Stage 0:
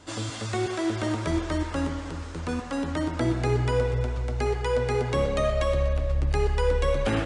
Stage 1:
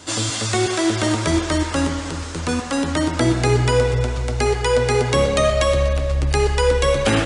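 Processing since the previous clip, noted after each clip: HPF 58 Hz; high shelf 3400 Hz +10 dB; gain +7.5 dB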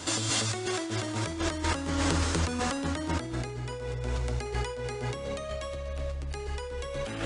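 negative-ratio compressor -27 dBFS, ratio -1; gain -5.5 dB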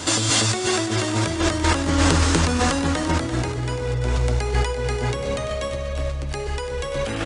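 feedback echo 0.34 s, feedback 38%, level -10 dB; gain +9 dB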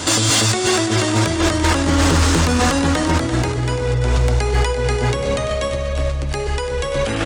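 in parallel at -1 dB: limiter -12 dBFS, peak gain reduction 10 dB; on the sum: overloaded stage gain 9.5 dB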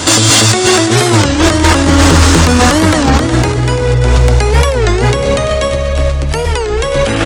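record warp 33 1/3 rpm, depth 250 cents; gain +8 dB

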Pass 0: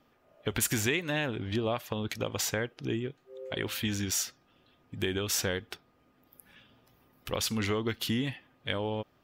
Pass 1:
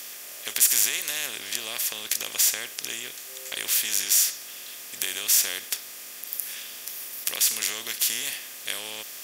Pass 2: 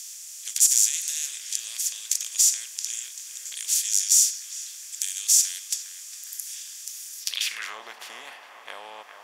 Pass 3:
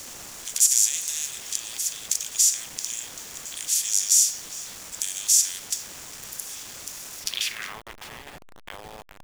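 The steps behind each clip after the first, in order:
per-bin compression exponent 0.4; differentiator; gain +6.5 dB
narrowing echo 0.408 s, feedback 78%, band-pass 1200 Hz, level -7.5 dB; band-pass sweep 6900 Hz -> 850 Hz, 7.18–7.78; gain +6.5 dB
level-crossing sampler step -35.5 dBFS

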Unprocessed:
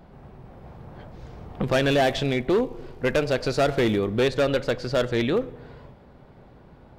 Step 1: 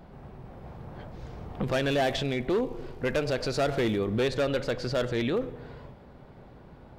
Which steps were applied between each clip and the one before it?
limiter -20.5 dBFS, peak gain reduction 6.5 dB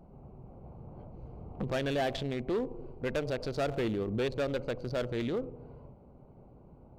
Wiener smoothing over 25 samples; gain -4.5 dB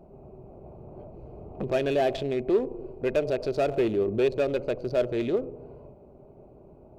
small resonant body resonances 390/610/2500 Hz, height 11 dB, ringing for 30 ms

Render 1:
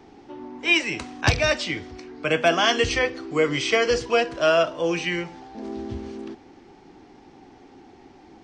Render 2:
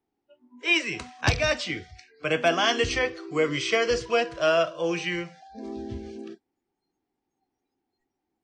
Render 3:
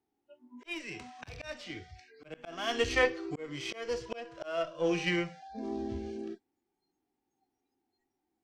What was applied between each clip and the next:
spectral noise reduction 30 dB; gain -3 dB
added harmonics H 6 -25 dB, 7 -31 dB, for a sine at -11 dBFS; harmonic-percussive split percussive -11 dB; auto swell 0.672 s; gain +2.5 dB

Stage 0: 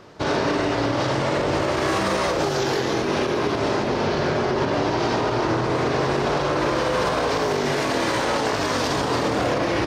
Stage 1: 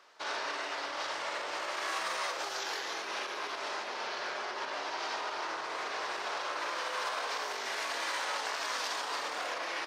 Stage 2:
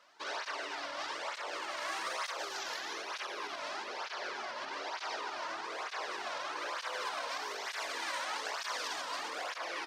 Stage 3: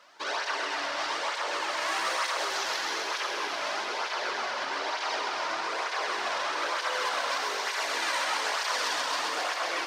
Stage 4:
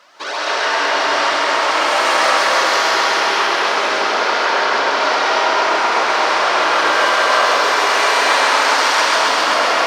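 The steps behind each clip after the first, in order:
HPF 990 Hz 12 dB/oct; gain -8 dB
tape flanging out of phase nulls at 1.1 Hz, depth 2.7 ms
thinning echo 0.131 s, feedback 80%, high-pass 420 Hz, level -6.5 dB; gain +7 dB
digital reverb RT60 4.9 s, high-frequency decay 0.4×, pre-delay 0.105 s, DRR -8 dB; gain +7.5 dB

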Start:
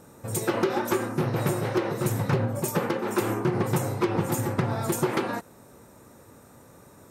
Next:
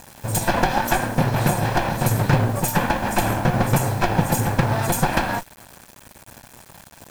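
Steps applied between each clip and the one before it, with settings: minimum comb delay 1.2 ms; requantised 8-bit, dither none; gain +8 dB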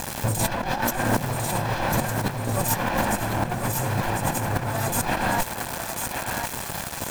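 negative-ratio compressor -30 dBFS, ratio -1; on a send: thinning echo 1.049 s, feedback 43%, high-pass 590 Hz, level -4.5 dB; on the sum: gain +4 dB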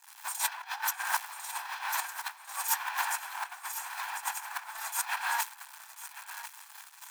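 expander -18 dBFS; steep high-pass 870 Hz 48 dB/oct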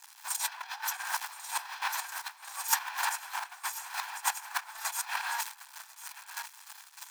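bell 5000 Hz +4.5 dB 1.2 oct; chopper 3.3 Hz, depth 60%, duty 20%; gain +4 dB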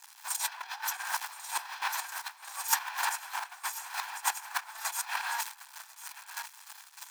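bell 380 Hz +10.5 dB 0.41 oct

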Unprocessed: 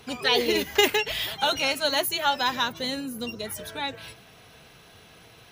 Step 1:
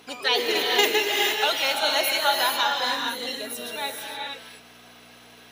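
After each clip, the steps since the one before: hum 60 Hz, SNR 13 dB; HPF 410 Hz 12 dB/oct; non-linear reverb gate 0.49 s rising, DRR 0 dB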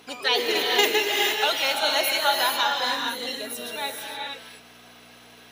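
nothing audible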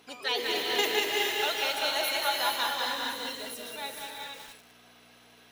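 lo-fi delay 0.19 s, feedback 55%, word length 6-bit, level -3.5 dB; gain -7.5 dB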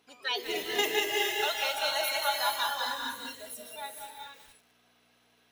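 spectral noise reduction 10 dB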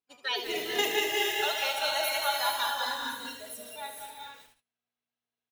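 gate -53 dBFS, range -28 dB; on a send: echo 75 ms -8.5 dB

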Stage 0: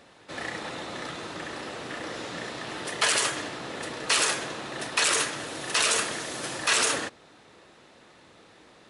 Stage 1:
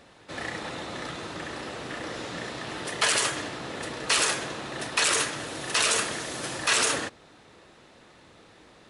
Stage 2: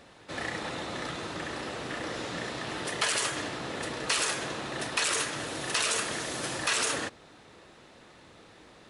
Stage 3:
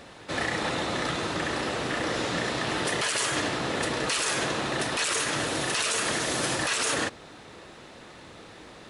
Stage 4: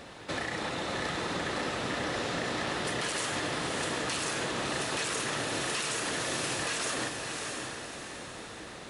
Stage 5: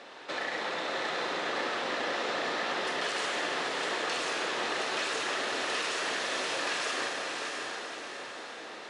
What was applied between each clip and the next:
low shelf 100 Hz +8 dB
compressor 2:1, threshold -28 dBFS, peak gain reduction 5.5 dB
limiter -24 dBFS, peak gain reduction 11.5 dB; gain +7 dB
compressor, threshold -31 dBFS, peak gain reduction 8 dB; on a send: diffused feedback echo 0.63 s, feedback 46%, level -4 dB
BPF 400–5300 Hz; reverb RT60 3.0 s, pre-delay 22 ms, DRR 2 dB

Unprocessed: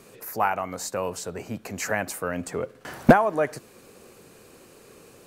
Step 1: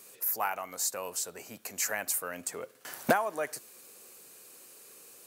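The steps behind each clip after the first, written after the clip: RIAA curve recording; gain -8 dB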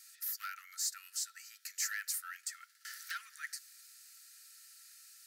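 soft clip -24.5 dBFS, distortion -10 dB; rippled Chebyshev high-pass 1300 Hz, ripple 9 dB; gain +2 dB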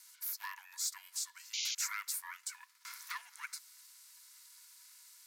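painted sound noise, 1.53–1.75, 2400–6800 Hz -36 dBFS; ring modulator 370 Hz; gain +2 dB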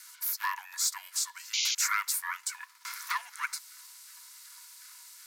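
LFO high-pass saw down 2.7 Hz 430–1500 Hz; gain +7.5 dB

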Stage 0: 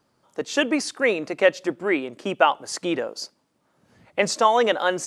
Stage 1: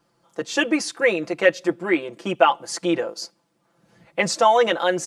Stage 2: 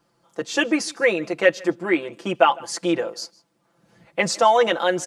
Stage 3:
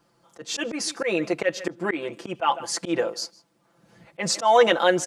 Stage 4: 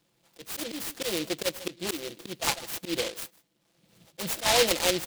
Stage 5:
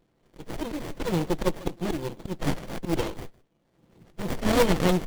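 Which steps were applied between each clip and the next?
comb 5.9 ms, depth 82%; gain -1 dB
echo 0.155 s -24 dB
auto swell 0.132 s; gain +1.5 dB
noise-modulated delay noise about 3200 Hz, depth 0.22 ms; gain -6 dB
bin magnitudes rounded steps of 30 dB; running maximum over 33 samples; gain +6 dB

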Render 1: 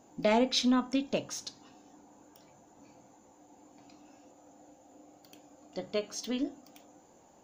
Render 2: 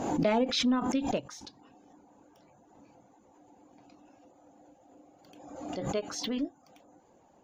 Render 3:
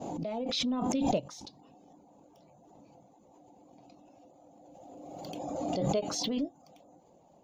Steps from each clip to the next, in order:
LPF 2500 Hz 6 dB/oct; reverb removal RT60 0.5 s; backwards sustainer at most 45 dB/s
opening faded in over 1.18 s; fifteen-band EQ 160 Hz +7 dB, 630 Hz +6 dB, 1600 Hz -11 dB, 4000 Hz +3 dB; backwards sustainer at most 22 dB/s; gain -2.5 dB

